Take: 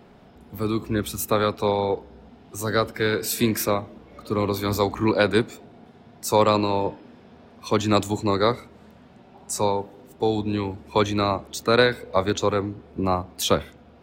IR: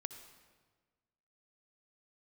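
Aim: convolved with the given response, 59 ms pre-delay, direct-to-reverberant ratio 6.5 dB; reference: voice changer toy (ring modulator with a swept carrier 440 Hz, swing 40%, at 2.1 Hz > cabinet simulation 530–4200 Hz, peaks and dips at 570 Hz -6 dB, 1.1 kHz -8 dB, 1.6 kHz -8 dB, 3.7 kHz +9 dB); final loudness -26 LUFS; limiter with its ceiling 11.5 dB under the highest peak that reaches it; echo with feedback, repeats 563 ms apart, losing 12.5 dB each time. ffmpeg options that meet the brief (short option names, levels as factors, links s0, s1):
-filter_complex "[0:a]alimiter=limit=0.15:level=0:latency=1,aecho=1:1:563|1126|1689:0.237|0.0569|0.0137,asplit=2[s0][s1];[1:a]atrim=start_sample=2205,adelay=59[s2];[s1][s2]afir=irnorm=-1:irlink=0,volume=0.631[s3];[s0][s3]amix=inputs=2:normalize=0,aeval=exprs='val(0)*sin(2*PI*440*n/s+440*0.4/2.1*sin(2*PI*2.1*n/s))':c=same,highpass=530,equalizer=f=570:t=q:w=4:g=-6,equalizer=f=1100:t=q:w=4:g=-8,equalizer=f=1600:t=q:w=4:g=-8,equalizer=f=3700:t=q:w=4:g=9,lowpass=f=4200:w=0.5412,lowpass=f=4200:w=1.3066,volume=2.82"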